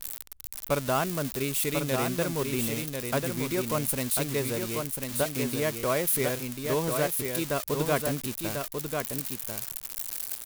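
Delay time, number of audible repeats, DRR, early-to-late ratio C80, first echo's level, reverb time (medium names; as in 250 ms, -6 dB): 1043 ms, 1, no reverb, no reverb, -5.0 dB, no reverb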